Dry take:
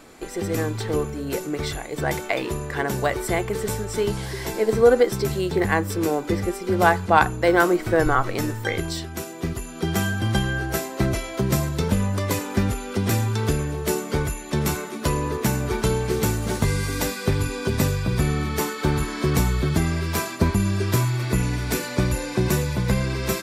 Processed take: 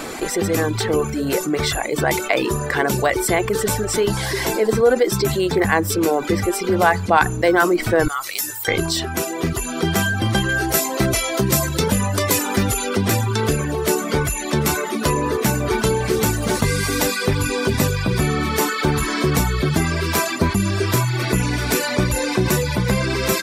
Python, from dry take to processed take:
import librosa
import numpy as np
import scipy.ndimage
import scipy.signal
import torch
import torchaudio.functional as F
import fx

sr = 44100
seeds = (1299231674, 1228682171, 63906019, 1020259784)

y = fx.pre_emphasis(x, sr, coefficient=0.97, at=(8.08, 8.68))
y = fx.high_shelf(y, sr, hz=4200.0, db=7.5, at=(10.49, 12.89))
y = fx.dereverb_blind(y, sr, rt60_s=0.63)
y = fx.low_shelf(y, sr, hz=130.0, db=-7.5)
y = fx.env_flatten(y, sr, amount_pct=50)